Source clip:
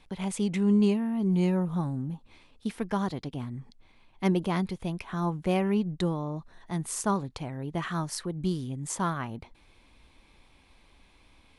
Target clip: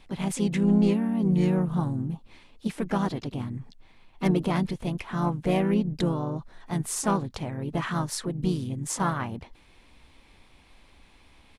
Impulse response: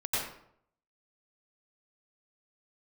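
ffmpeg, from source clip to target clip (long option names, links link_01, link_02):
-filter_complex "[0:a]aeval=exprs='0.266*(cos(1*acos(clip(val(0)/0.266,-1,1)))-cos(1*PI/2))+0.00841*(cos(4*acos(clip(val(0)/0.266,-1,1)))-cos(4*PI/2))+0.0376*(cos(5*acos(clip(val(0)/0.266,-1,1)))-cos(5*PI/2))+0.00188*(cos(6*acos(clip(val(0)/0.266,-1,1)))-cos(6*PI/2))+0.00596*(cos(7*acos(clip(val(0)/0.266,-1,1)))-cos(7*PI/2))':channel_layout=same,asplit=3[link_01][link_02][link_03];[link_02]asetrate=37084,aresample=44100,atempo=1.18921,volume=-7dB[link_04];[link_03]asetrate=55563,aresample=44100,atempo=0.793701,volume=-13dB[link_05];[link_01][link_04][link_05]amix=inputs=3:normalize=0,volume=-1.5dB"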